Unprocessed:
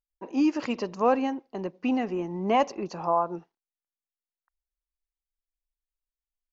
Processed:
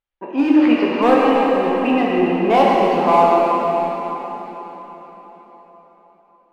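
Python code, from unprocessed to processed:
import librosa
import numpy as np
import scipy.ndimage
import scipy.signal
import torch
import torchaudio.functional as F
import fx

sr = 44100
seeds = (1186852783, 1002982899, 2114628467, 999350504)

p1 = scipy.signal.sosfilt(scipy.signal.butter(4, 3300.0, 'lowpass', fs=sr, output='sos'), x)
p2 = fx.low_shelf(p1, sr, hz=170.0, db=-10.5)
p3 = 10.0 ** (-21.5 / 20.0) * (np.abs((p2 / 10.0 ** (-21.5 / 20.0) + 3.0) % 4.0 - 2.0) - 1.0)
p4 = p2 + F.gain(torch.from_numpy(p3), -6.5).numpy()
p5 = fx.rev_plate(p4, sr, seeds[0], rt60_s=4.6, hf_ratio=0.85, predelay_ms=0, drr_db=-5.5)
y = F.gain(torch.from_numpy(p5), 5.0).numpy()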